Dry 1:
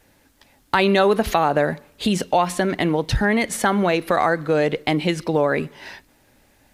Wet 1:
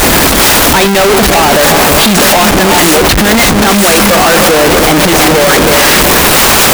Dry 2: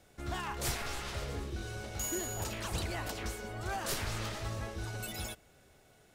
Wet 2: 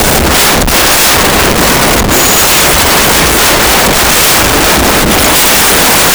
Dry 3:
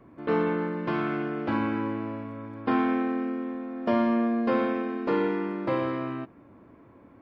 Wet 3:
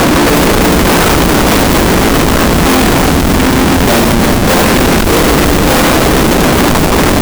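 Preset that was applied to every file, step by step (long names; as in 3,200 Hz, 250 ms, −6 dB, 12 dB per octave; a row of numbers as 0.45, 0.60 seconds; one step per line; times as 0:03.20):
spike at every zero crossing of −13 dBFS
reverb reduction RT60 1.9 s
high-shelf EQ 3,400 Hz +11 dB
tuned comb filter 99 Hz, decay 0.54 s, harmonics all, mix 40%
reverb whose tail is shaped and stops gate 420 ms rising, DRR 8 dB
compressor whose output falls as the input rises −19 dBFS, ratio −0.5
on a send: echo with a time of its own for lows and highs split 680 Hz, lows 315 ms, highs 639 ms, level −12 dB
on the sum: comparator with hysteresis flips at −21.5 dBFS
brickwall limiter −23 dBFS
parametric band 110 Hz −8 dB 0.42 octaves
normalise the peak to −2 dBFS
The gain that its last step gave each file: +18.0, +17.5, +18.5 decibels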